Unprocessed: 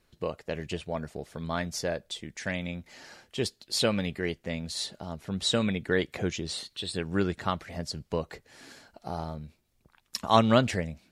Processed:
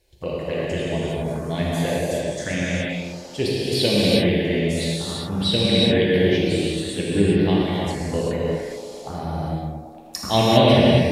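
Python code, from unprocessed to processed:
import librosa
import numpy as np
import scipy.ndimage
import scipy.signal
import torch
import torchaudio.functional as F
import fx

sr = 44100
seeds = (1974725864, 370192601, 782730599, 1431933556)

y = fx.env_phaser(x, sr, low_hz=210.0, high_hz=1300.0, full_db=-29.0)
y = fx.echo_wet_bandpass(y, sr, ms=112, feedback_pct=77, hz=500.0, wet_db=-9.0)
y = fx.rev_gated(y, sr, seeds[0], gate_ms=430, shape='flat', drr_db=-7.0)
y = y * 10.0 ** (4.5 / 20.0)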